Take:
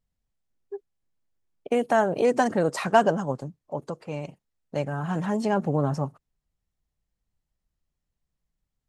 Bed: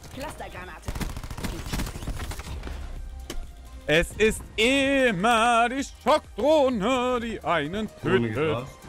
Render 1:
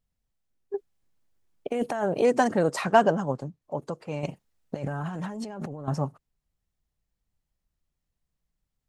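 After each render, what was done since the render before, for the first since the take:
0:00.74–0:02.04: compressor whose output falls as the input rises −27 dBFS
0:02.81–0:03.62: high-shelf EQ 8,100 Hz −8.5 dB
0:04.23–0:05.88: compressor whose output falls as the input rises −34 dBFS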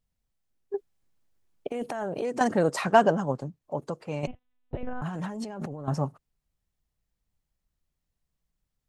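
0:01.68–0:02.41: downward compressor 3 to 1, threshold −29 dBFS
0:04.27–0:05.02: one-pitch LPC vocoder at 8 kHz 250 Hz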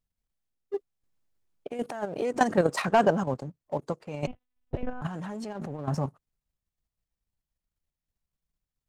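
leveller curve on the samples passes 1
output level in coarse steps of 9 dB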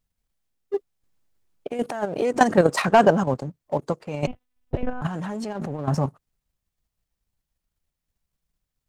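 level +6 dB

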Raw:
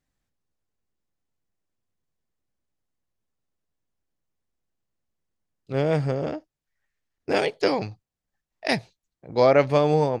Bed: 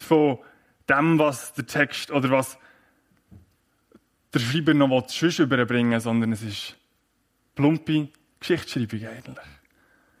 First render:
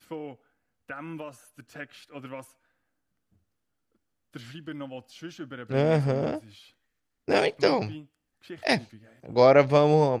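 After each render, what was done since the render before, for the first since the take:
mix in bed −19 dB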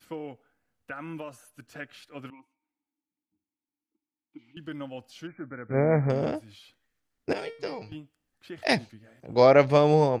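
0:02.30–0:04.57: formant filter u
0:05.27–0:06.10: linear-phase brick-wall low-pass 2,400 Hz
0:07.33–0:07.92: tuned comb filter 460 Hz, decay 0.4 s, mix 80%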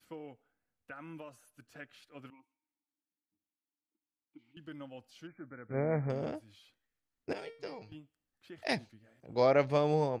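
level −9 dB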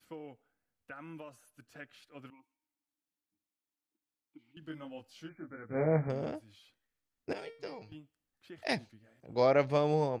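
0:04.60–0:06.08: double-tracking delay 19 ms −2.5 dB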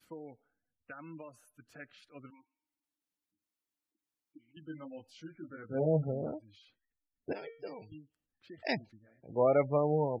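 gate on every frequency bin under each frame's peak −20 dB strong
notch filter 790 Hz, Q 23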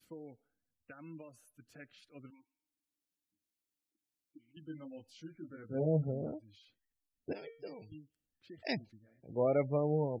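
parametric band 1,100 Hz −8.5 dB 1.8 octaves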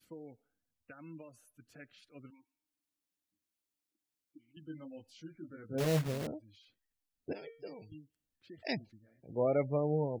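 0:05.78–0:06.28: one scale factor per block 3 bits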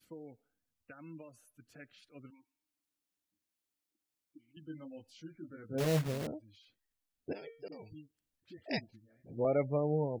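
0:07.68–0:09.45: all-pass dispersion highs, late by 43 ms, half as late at 400 Hz

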